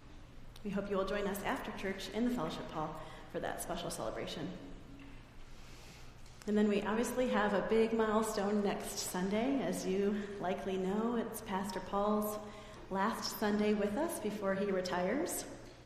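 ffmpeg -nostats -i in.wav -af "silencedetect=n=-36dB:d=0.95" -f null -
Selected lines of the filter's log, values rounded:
silence_start: 4.55
silence_end: 6.42 | silence_duration: 1.87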